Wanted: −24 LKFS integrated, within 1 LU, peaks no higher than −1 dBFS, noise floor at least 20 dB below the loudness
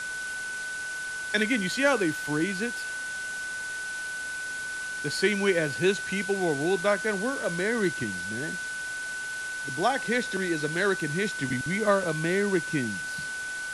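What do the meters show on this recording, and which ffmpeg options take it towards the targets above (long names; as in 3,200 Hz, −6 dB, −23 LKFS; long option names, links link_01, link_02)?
interfering tone 1,500 Hz; level of the tone −32 dBFS; background noise floor −35 dBFS; target noise floor −48 dBFS; integrated loudness −28.0 LKFS; sample peak −11.0 dBFS; target loudness −24.0 LKFS
→ -af "bandreject=frequency=1500:width=30"
-af "afftdn=noise_reduction=13:noise_floor=-35"
-af "volume=4dB"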